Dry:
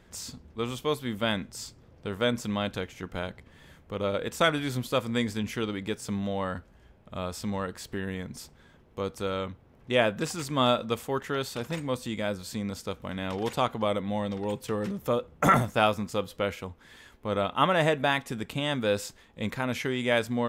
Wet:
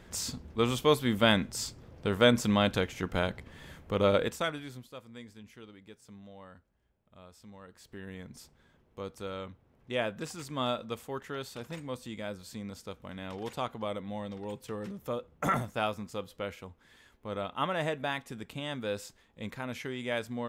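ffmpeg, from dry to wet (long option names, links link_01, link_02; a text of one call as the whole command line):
ffmpeg -i in.wav -af "volume=15.5dB,afade=type=out:start_time=4.19:duration=0.2:silence=0.251189,afade=type=out:start_time=4.39:duration=0.52:silence=0.266073,afade=type=in:start_time=7.6:duration=0.67:silence=0.266073" out.wav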